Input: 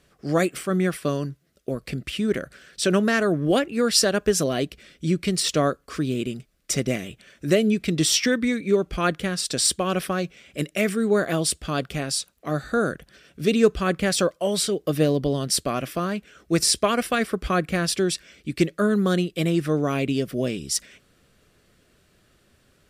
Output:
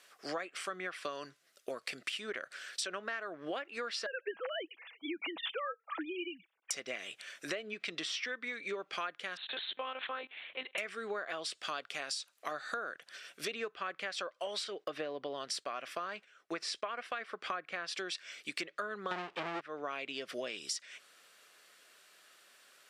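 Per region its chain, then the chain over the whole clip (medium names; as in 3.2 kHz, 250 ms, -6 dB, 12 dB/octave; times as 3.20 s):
4.06–6.71 s: formants replaced by sine waves + comb 6.1 ms, depth 36%
9.37–10.78 s: compression 2.5:1, threshold -25 dBFS + monotone LPC vocoder at 8 kHz 260 Hz
14.64–17.96 s: treble shelf 4 kHz -8.5 dB + gate -47 dBFS, range -13 dB
19.11–19.61 s: bass shelf 450 Hz +11 dB + power-law waveshaper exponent 0.35 + upward expansion 2.5:1, over -19 dBFS
whole clip: low-pass that closes with the level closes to 2.6 kHz, closed at -17.5 dBFS; high-pass 880 Hz 12 dB/octave; compression 10:1, threshold -39 dBFS; trim +3.5 dB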